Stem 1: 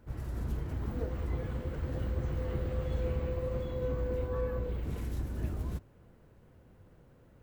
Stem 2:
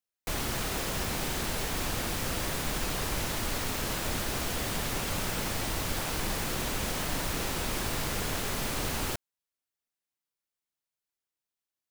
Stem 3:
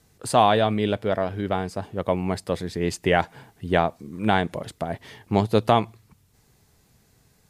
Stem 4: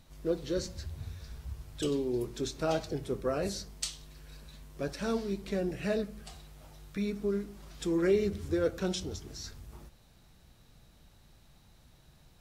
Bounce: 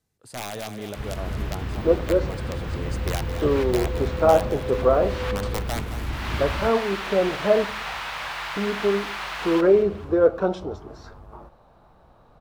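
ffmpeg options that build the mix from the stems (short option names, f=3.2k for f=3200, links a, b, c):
-filter_complex "[0:a]adelay=900,volume=-1dB[a];[1:a]highpass=f=840:w=0.5412,highpass=f=840:w=1.3066,acrossover=split=4100[b][c];[c]acompressor=threshold=-54dB:ratio=4:attack=1:release=60[d];[b][d]amix=inputs=2:normalize=0,highshelf=f=5.9k:g=-8,adelay=450,volume=1dB,asplit=2[e][f];[f]volume=-13dB[g];[2:a]aeval=exprs='(mod(3.16*val(0)+1,2)-1)/3.16':c=same,volume=-17dB,asplit=3[h][i][j];[i]volume=-12dB[k];[3:a]firequalizer=gain_entry='entry(150,0);entry(570,13);entry(1100,14);entry(1900,-3);entry(6500,-17)':delay=0.05:min_phase=1,adelay=1600,volume=-4dB[l];[j]apad=whole_len=544787[m];[e][m]sidechaincompress=threshold=-60dB:ratio=8:attack=31:release=278[n];[g][k]amix=inputs=2:normalize=0,aecho=0:1:218|436|654|872|1090|1308:1|0.46|0.212|0.0973|0.0448|0.0206[o];[a][n][h][l][o]amix=inputs=5:normalize=0,dynaudnorm=f=250:g=5:m=6.5dB"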